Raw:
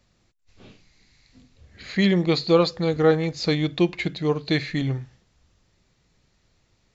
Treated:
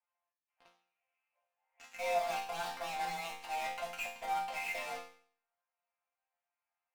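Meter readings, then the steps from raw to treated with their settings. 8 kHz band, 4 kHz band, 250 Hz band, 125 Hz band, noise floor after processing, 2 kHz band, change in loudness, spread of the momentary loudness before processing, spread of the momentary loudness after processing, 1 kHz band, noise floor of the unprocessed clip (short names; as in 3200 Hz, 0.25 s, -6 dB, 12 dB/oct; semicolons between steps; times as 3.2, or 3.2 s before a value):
n/a, -16.0 dB, -36.5 dB, -37.0 dB, under -85 dBFS, -9.5 dB, -15.0 dB, 7 LU, 8 LU, -2.5 dB, -67 dBFS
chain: Wiener smoothing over 9 samples; auto swell 0.164 s; mistuned SSB +330 Hz 330–2600 Hz; in parallel at -4 dB: fuzz box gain 45 dB, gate -45 dBFS; on the sum: resonator bank F3 sus4, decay 0.52 s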